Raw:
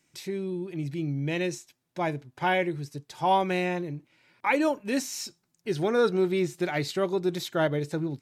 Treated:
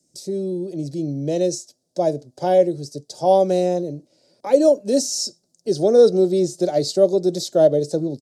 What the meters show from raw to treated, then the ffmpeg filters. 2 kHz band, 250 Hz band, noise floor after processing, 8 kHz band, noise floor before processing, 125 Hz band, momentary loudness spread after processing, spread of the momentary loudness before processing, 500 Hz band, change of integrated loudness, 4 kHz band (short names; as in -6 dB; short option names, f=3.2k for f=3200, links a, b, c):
under -10 dB, +6.5 dB, -69 dBFS, +11.0 dB, -75 dBFS, +3.5 dB, 14 LU, 12 LU, +11.5 dB, +9.0 dB, +6.5 dB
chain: -filter_complex "[0:a]firequalizer=gain_entry='entry(120,0);entry(200,6);entry(360,3);entry(590,8);entry(930,-16);entry(2300,-24);entry(4700,5);entry(9300,8);entry(14000,-4)':delay=0.05:min_phase=1,acrossover=split=140|420|6200[a][b][c][d];[c]dynaudnorm=f=190:g=3:m=9dB[e];[a][b][e][d]amix=inputs=4:normalize=0"